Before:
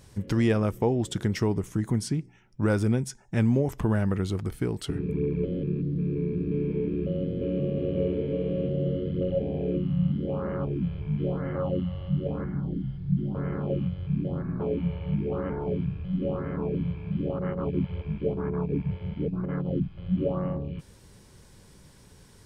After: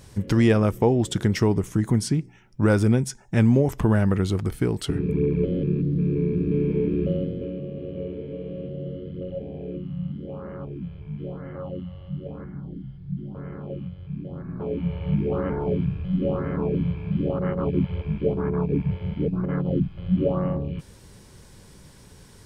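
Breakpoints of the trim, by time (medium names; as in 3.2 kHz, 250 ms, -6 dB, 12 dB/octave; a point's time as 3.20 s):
7.11 s +5 dB
7.61 s -5.5 dB
14.28 s -5.5 dB
15.09 s +4.5 dB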